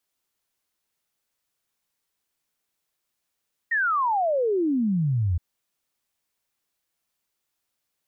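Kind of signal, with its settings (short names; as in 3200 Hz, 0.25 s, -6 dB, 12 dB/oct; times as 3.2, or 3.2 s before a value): log sweep 1900 Hz -> 81 Hz 1.67 s -20 dBFS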